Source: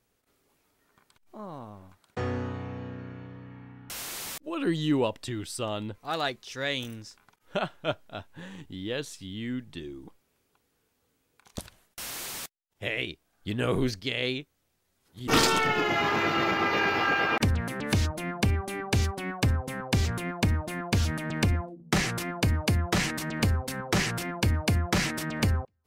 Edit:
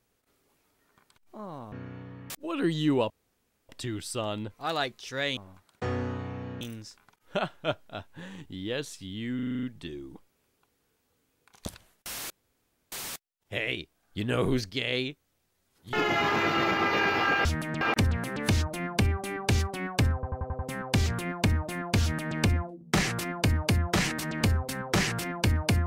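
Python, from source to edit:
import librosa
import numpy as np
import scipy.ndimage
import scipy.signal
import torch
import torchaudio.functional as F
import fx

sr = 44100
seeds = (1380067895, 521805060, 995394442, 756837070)

y = fx.edit(x, sr, fx.move(start_s=1.72, length_s=1.24, to_s=6.81),
    fx.cut(start_s=3.54, length_s=0.79),
    fx.insert_room_tone(at_s=5.13, length_s=0.59),
    fx.stutter(start_s=9.55, slice_s=0.04, count=8),
    fx.insert_room_tone(at_s=12.22, length_s=0.62),
    fx.cut(start_s=15.23, length_s=0.5),
    fx.stutter(start_s=19.58, slice_s=0.09, count=6),
    fx.duplicate(start_s=21.01, length_s=0.36, to_s=17.25), tone=tone)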